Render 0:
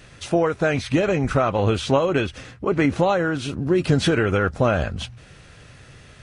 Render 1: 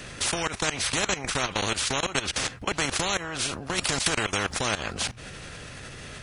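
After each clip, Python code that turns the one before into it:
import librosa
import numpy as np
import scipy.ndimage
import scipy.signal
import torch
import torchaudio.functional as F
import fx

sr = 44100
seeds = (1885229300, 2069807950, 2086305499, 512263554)

y = fx.high_shelf(x, sr, hz=6000.0, db=4.5)
y = fx.level_steps(y, sr, step_db=20)
y = fx.spectral_comp(y, sr, ratio=4.0)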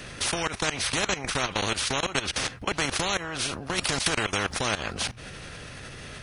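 y = fx.peak_eq(x, sr, hz=7400.0, db=-5.5, octaves=0.26)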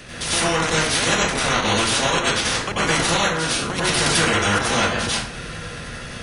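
y = fx.rev_plate(x, sr, seeds[0], rt60_s=0.66, hf_ratio=0.6, predelay_ms=80, drr_db=-8.0)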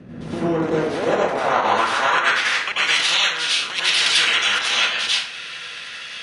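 y = fx.filter_sweep_bandpass(x, sr, from_hz=210.0, to_hz=3100.0, start_s=0.2, end_s=2.98, q=1.6)
y = y * librosa.db_to_amplitude(7.5)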